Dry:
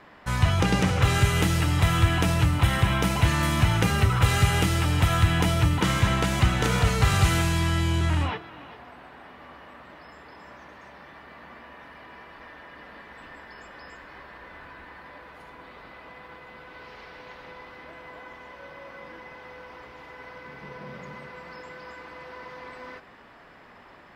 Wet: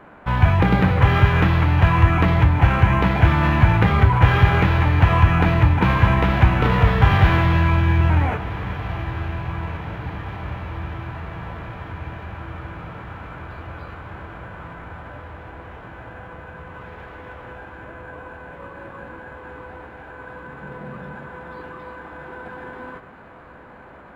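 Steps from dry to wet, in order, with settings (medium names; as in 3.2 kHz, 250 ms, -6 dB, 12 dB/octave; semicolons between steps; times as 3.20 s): treble shelf 3.2 kHz +9.5 dB; on a send: echo that smears into a reverb 1755 ms, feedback 65%, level -14 dB; on the sum: sample-and-hold 4×; distance through air 370 m; formant shift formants -4 st; trim +6.5 dB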